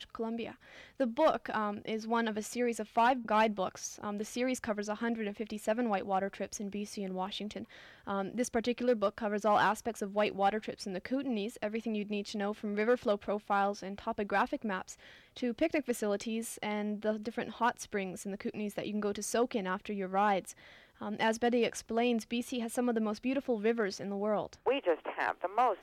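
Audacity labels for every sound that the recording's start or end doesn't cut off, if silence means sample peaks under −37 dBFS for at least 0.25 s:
1.000000	7.630000	sound
8.070000	14.910000	sound
15.370000	20.510000	sound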